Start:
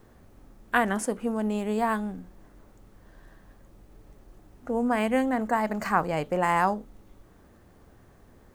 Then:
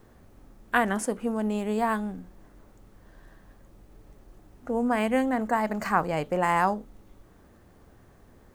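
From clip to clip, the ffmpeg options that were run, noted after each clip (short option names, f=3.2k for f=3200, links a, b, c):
-af anull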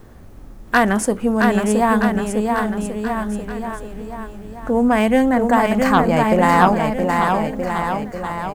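-af "aeval=exprs='0.398*sin(PI/2*1.58*val(0)/0.398)':c=same,lowshelf=f=150:g=5,aecho=1:1:670|1273|1816|2304|2744:0.631|0.398|0.251|0.158|0.1,volume=1.5dB"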